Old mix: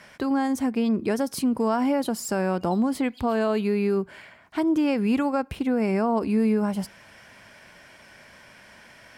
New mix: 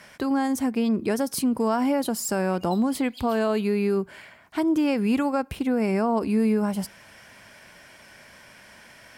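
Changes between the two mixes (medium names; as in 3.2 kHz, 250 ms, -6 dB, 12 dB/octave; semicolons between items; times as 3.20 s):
background +5.5 dB; master: add treble shelf 7.4 kHz +7 dB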